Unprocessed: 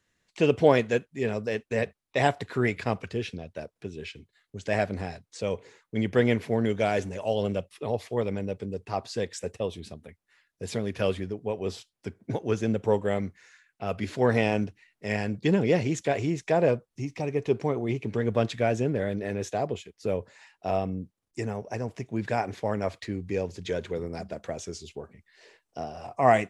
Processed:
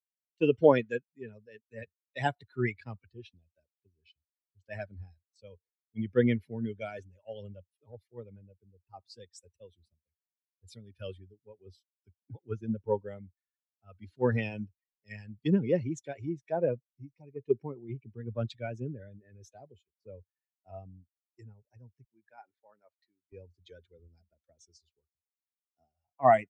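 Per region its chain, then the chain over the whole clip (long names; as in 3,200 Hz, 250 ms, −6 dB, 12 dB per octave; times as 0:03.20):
0:22.04–0:23.32: high-pass filter 580 Hz 6 dB per octave + high-shelf EQ 2,900 Hz −6.5 dB
whole clip: spectral dynamics exaggerated over time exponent 2; high-shelf EQ 3,700 Hz −11 dB; multiband upward and downward expander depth 70%; level −4.5 dB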